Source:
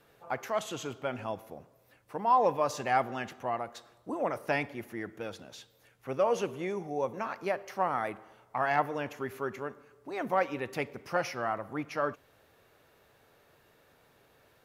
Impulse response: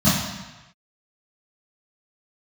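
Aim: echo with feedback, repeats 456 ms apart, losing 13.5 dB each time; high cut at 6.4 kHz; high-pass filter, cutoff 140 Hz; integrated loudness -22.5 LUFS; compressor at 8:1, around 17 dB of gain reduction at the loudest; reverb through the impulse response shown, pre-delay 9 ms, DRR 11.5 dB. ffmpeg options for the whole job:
-filter_complex "[0:a]highpass=140,lowpass=6400,acompressor=threshold=0.0126:ratio=8,aecho=1:1:456|912:0.211|0.0444,asplit=2[s0][s1];[1:a]atrim=start_sample=2205,adelay=9[s2];[s1][s2]afir=irnorm=-1:irlink=0,volume=0.0299[s3];[s0][s3]amix=inputs=2:normalize=0,volume=10.6"

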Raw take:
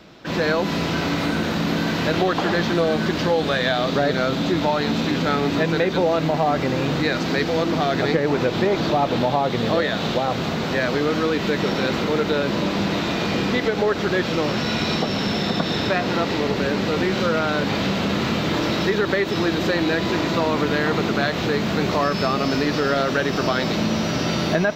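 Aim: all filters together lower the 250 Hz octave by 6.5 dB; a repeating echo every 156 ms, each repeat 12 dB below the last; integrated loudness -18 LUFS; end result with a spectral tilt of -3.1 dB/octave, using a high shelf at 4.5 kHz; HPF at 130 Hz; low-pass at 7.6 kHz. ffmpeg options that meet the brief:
-af "highpass=130,lowpass=7600,equalizer=f=250:t=o:g=-8.5,highshelf=f=4500:g=-4.5,aecho=1:1:156|312|468:0.251|0.0628|0.0157,volume=1.88"

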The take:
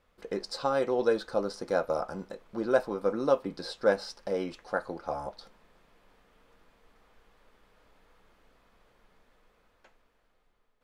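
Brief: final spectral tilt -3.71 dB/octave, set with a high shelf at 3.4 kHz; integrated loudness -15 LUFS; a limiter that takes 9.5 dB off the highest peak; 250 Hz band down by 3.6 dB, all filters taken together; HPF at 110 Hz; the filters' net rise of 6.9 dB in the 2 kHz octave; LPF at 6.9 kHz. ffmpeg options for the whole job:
-af "highpass=110,lowpass=6900,equalizer=f=250:t=o:g=-5,equalizer=f=2000:t=o:g=8.5,highshelf=f=3400:g=6,volume=8.41,alimiter=limit=0.944:level=0:latency=1"

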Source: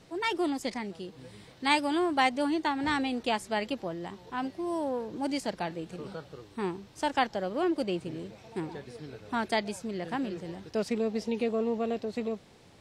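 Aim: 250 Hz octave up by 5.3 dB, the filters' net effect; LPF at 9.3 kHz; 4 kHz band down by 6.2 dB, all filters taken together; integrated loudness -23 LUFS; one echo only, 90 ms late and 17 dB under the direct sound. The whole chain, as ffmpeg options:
-af "lowpass=9300,equalizer=f=250:t=o:g=6.5,equalizer=f=4000:t=o:g=-8.5,aecho=1:1:90:0.141,volume=2"

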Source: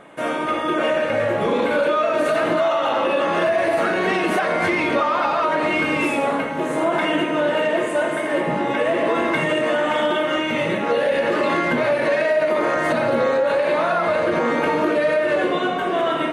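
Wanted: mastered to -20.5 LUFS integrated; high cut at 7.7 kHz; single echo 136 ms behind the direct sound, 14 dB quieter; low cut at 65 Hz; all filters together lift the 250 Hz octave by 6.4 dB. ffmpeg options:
-af "highpass=65,lowpass=7700,equalizer=f=250:t=o:g=8.5,aecho=1:1:136:0.2,volume=0.708"

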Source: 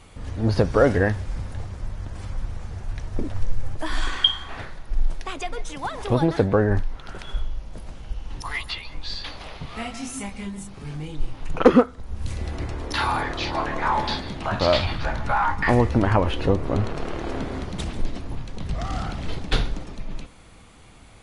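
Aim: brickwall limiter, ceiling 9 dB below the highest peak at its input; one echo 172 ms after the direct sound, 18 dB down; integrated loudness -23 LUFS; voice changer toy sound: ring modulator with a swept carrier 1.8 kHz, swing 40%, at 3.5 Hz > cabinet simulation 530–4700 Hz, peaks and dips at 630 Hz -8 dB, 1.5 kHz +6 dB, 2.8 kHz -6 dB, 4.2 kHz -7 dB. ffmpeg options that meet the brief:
-af "alimiter=limit=0.251:level=0:latency=1,aecho=1:1:172:0.126,aeval=exprs='val(0)*sin(2*PI*1800*n/s+1800*0.4/3.5*sin(2*PI*3.5*n/s))':c=same,highpass=530,equalizer=f=630:t=q:w=4:g=-8,equalizer=f=1500:t=q:w=4:g=6,equalizer=f=2800:t=q:w=4:g=-6,equalizer=f=4200:t=q:w=4:g=-7,lowpass=f=4700:w=0.5412,lowpass=f=4700:w=1.3066,volume=1.33"

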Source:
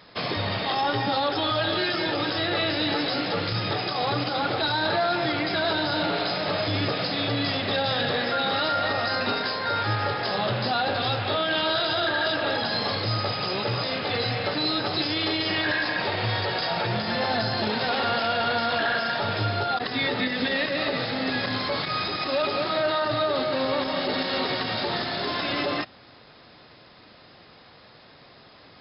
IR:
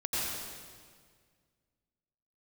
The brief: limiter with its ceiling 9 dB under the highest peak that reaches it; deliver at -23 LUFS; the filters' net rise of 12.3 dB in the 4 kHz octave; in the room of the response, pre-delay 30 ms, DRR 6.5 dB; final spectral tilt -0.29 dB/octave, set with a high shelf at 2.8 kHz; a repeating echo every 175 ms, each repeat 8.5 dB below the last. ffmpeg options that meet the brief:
-filter_complex "[0:a]highshelf=f=2800:g=8,equalizer=f=4000:t=o:g=8,alimiter=limit=0.211:level=0:latency=1,aecho=1:1:175|350|525|700:0.376|0.143|0.0543|0.0206,asplit=2[s0][s1];[1:a]atrim=start_sample=2205,adelay=30[s2];[s1][s2]afir=irnorm=-1:irlink=0,volume=0.211[s3];[s0][s3]amix=inputs=2:normalize=0,volume=0.631"

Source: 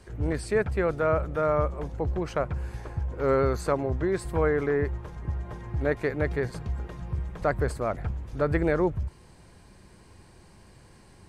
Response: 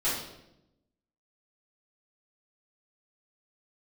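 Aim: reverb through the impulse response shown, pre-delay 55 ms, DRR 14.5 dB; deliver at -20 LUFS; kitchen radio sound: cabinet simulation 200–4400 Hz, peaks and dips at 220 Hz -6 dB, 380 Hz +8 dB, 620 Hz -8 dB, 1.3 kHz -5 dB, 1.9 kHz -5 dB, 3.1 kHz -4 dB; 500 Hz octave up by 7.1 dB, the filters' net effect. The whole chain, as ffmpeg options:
-filter_complex "[0:a]equalizer=f=500:t=o:g=7,asplit=2[s0][s1];[1:a]atrim=start_sample=2205,adelay=55[s2];[s1][s2]afir=irnorm=-1:irlink=0,volume=0.0631[s3];[s0][s3]amix=inputs=2:normalize=0,highpass=200,equalizer=f=220:t=q:w=4:g=-6,equalizer=f=380:t=q:w=4:g=8,equalizer=f=620:t=q:w=4:g=-8,equalizer=f=1300:t=q:w=4:g=-5,equalizer=f=1900:t=q:w=4:g=-5,equalizer=f=3100:t=q:w=4:g=-4,lowpass=f=4400:w=0.5412,lowpass=f=4400:w=1.3066,volume=1.26"

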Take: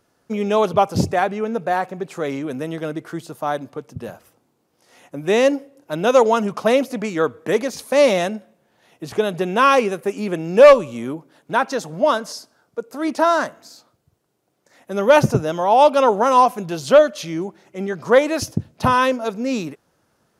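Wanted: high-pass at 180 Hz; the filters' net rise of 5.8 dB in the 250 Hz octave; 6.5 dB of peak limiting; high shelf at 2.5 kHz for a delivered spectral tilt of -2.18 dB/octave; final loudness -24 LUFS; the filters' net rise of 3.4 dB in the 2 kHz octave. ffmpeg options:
-af "highpass=180,equalizer=f=250:t=o:g=8.5,equalizer=f=2000:t=o:g=7,highshelf=f=2500:g=-5.5,volume=0.531,alimiter=limit=0.282:level=0:latency=1"

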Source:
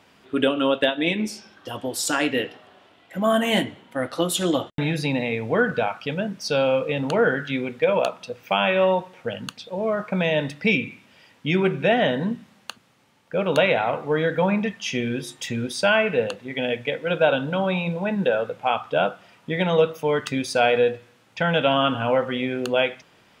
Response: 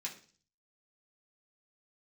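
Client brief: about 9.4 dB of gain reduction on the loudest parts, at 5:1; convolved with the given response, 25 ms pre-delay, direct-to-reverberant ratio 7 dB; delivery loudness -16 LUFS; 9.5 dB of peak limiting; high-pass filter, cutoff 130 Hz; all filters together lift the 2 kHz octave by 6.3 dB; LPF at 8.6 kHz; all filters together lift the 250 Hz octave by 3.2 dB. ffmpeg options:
-filter_complex "[0:a]highpass=130,lowpass=8600,equalizer=f=250:t=o:g=4.5,equalizer=f=2000:t=o:g=8.5,acompressor=threshold=0.0794:ratio=5,alimiter=limit=0.126:level=0:latency=1,asplit=2[s0][s1];[1:a]atrim=start_sample=2205,adelay=25[s2];[s1][s2]afir=irnorm=-1:irlink=0,volume=0.473[s3];[s0][s3]amix=inputs=2:normalize=0,volume=3.98"

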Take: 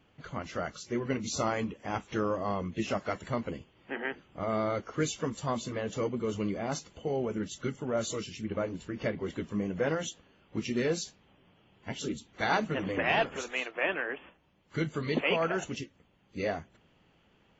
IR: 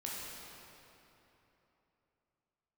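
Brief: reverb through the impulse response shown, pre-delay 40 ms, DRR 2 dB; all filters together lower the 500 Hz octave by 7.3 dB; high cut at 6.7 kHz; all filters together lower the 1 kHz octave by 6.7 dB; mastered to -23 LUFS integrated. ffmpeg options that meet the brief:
-filter_complex "[0:a]lowpass=6700,equalizer=f=500:t=o:g=-7.5,equalizer=f=1000:t=o:g=-6.5,asplit=2[s0][s1];[1:a]atrim=start_sample=2205,adelay=40[s2];[s1][s2]afir=irnorm=-1:irlink=0,volume=0.668[s3];[s0][s3]amix=inputs=2:normalize=0,volume=3.76"

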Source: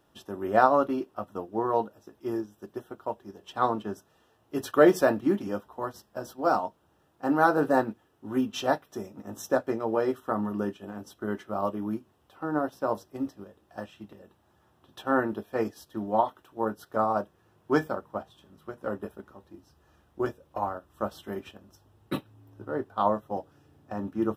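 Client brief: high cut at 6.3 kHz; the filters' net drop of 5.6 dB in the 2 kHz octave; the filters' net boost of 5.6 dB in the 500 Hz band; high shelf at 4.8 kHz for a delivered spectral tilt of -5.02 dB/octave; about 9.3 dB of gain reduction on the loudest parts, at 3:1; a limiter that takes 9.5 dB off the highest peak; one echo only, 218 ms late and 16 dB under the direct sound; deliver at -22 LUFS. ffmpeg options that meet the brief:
-af "lowpass=6300,equalizer=f=500:t=o:g=7.5,equalizer=f=2000:t=o:g=-8,highshelf=f=4800:g=-9,acompressor=threshold=0.0891:ratio=3,alimiter=limit=0.1:level=0:latency=1,aecho=1:1:218:0.158,volume=3.35"

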